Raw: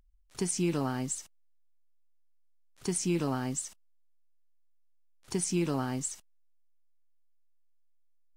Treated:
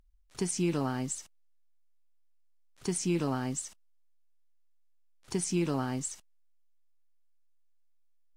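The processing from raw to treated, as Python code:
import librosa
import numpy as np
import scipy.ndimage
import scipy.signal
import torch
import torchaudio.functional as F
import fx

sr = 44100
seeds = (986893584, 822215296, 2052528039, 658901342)

y = fx.high_shelf(x, sr, hz=12000.0, db=-7.0)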